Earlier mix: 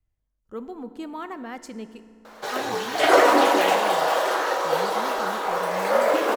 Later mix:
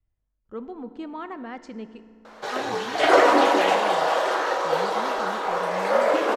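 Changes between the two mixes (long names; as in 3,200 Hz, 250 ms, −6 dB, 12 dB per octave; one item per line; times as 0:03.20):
speech: add high-frequency loss of the air 96 metres
master: add high-frequency loss of the air 51 metres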